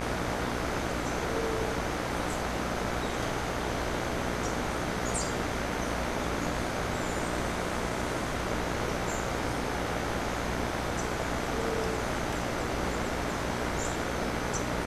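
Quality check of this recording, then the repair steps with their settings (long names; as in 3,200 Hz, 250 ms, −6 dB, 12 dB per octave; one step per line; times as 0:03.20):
mains buzz 60 Hz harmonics 39 −36 dBFS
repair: hum removal 60 Hz, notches 39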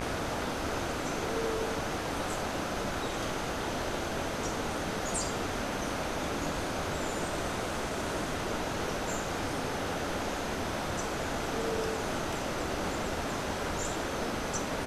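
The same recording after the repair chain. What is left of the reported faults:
none of them is left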